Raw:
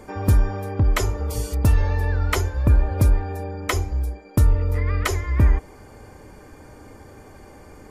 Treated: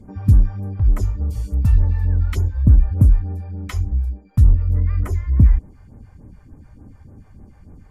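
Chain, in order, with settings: phaser stages 2, 3.4 Hz, lowest notch 220–3900 Hz; resonant low shelf 300 Hz +9.5 dB, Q 1.5; mismatched tape noise reduction decoder only; gain -6.5 dB

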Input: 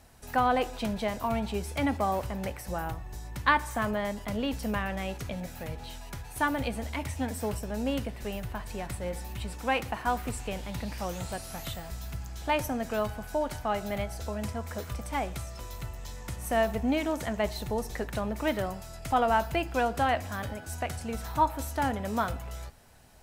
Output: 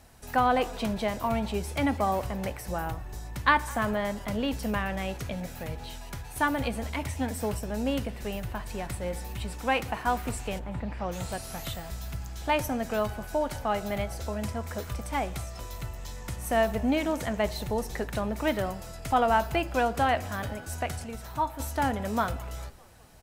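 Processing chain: 10.58–11.11 LPF 1300 Hz -> 2600 Hz 12 dB/oct; 21.04–21.6 resonator 130 Hz, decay 0.18 s, harmonics all, mix 60%; on a send: frequency-shifting echo 0.202 s, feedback 61%, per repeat -58 Hz, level -23 dB; on the sum: gain +1.5 dB

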